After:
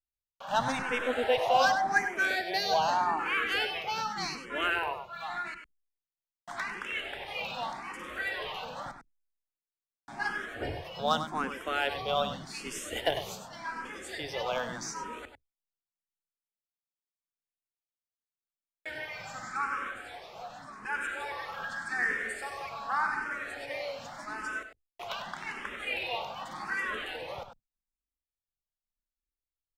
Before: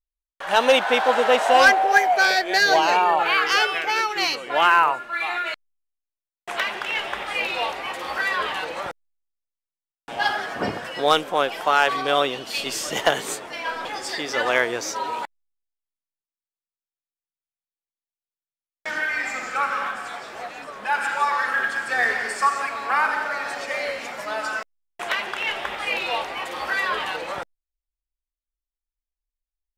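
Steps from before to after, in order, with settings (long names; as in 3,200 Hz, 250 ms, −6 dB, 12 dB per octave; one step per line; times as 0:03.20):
sub-octave generator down 1 octave, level +1 dB
0:01.03–0:03.38: low-shelf EQ 120 Hz −8 dB
slap from a distant wall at 17 metres, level −9 dB
frequency shifter mixed with the dry sound +0.85 Hz
level −8 dB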